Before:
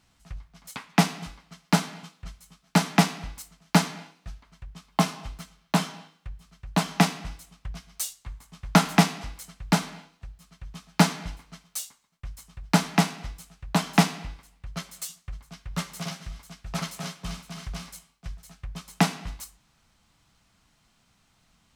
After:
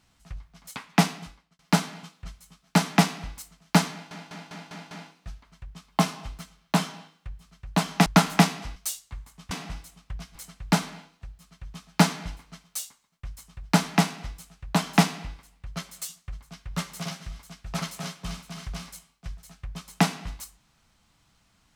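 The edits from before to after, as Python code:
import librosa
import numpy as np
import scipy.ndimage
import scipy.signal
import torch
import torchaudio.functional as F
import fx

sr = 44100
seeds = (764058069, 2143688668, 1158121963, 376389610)

y = fx.edit(x, sr, fx.fade_out_span(start_s=1.06, length_s=0.53),
    fx.stutter(start_s=3.91, slice_s=0.2, count=6),
    fx.swap(start_s=7.06, length_s=0.84, other_s=8.65, other_length_s=0.7), tone=tone)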